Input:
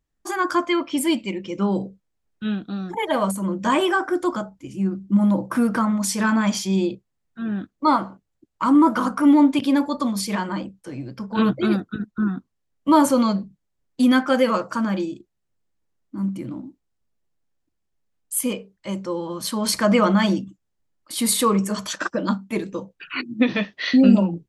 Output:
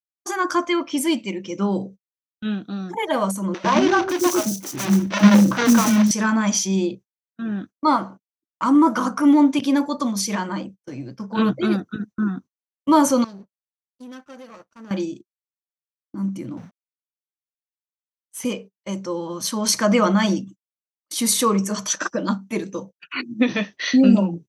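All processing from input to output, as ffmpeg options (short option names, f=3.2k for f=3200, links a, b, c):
-filter_complex "[0:a]asettb=1/sr,asplit=3[a][b][c];[a]atrim=end=3.544[d];[b]atrim=start=3.54:end=6.11,asetpts=PTS-STARTPTS,afade=t=in:d=0.004:c=qsin,afade=t=out:st=2.566:d=0.004:c=qsin,tiltshelf=f=1.4k:g=6.5,acrusher=bits=2:mode=log:mix=0:aa=0.000001,acrossover=split=380|4800[e][f][g];[e]adelay=100[h];[g]adelay=550[i];[h][f][i]amix=inputs=3:normalize=0,atrim=end_sample=113337[j];[c]atrim=start=6.106[k];[d][j]acrossfade=d=0.004:c1=hsin:c2=qsin[l];[l][k]acrossfade=d=0.004:c1=qsin:c2=hsin,asettb=1/sr,asplit=3[m][n][o];[m]atrim=end=13.244[p];[n]atrim=start=13.24:end=14.91,asetpts=PTS-STARTPTS,afade=t=in:d=0.004:c=qsin,afade=t=out:st=1.666:d=0.004:c=qsin,aeval=exprs='sgn(val(0))*max(abs(val(0))-0.00447,0)':c=same,acompressor=threshold=-30dB:ratio=10:attack=3.2:release=140:knee=1:detection=peak,aeval=exprs='(tanh(50.1*val(0)+0.7)-tanh(0.7))/50.1':c=same[q];[o]atrim=start=14.906[r];[p][q]acrossfade=d=0.004:c1=hsin:c2=qsin[s];[s][r]acrossfade=d=0.004:c1=qsin:c2=hsin,asettb=1/sr,asplit=3[t][u][v];[t]atrim=end=16.574[w];[u]atrim=start=16.57:end=18.45,asetpts=PTS-STARTPTS,afade=t=in:d=0.004:c=qsin,afade=t=out:st=1.876:d=0.004:c=qsin,afreqshift=-86,aeval=exprs='val(0)*gte(abs(val(0)),0.00596)':c=same,asplit=2[x][y];[y]highpass=f=720:p=1,volume=11dB,asoftclip=type=tanh:threshold=-10dB[z];[x][z]amix=inputs=2:normalize=0,lowpass=f=1.4k:p=1,volume=-6dB[aa];[v]atrim=start=18.446[ab];[w][aa]acrossfade=d=0.004:c1=hsin:c2=qsin[ac];[ac][ab]acrossfade=d=0.004:c1=qsin:c2=hsin,highpass=100,agate=range=-33dB:threshold=-38dB:ratio=16:detection=peak,equalizer=f=6k:w=6.3:g=13.5"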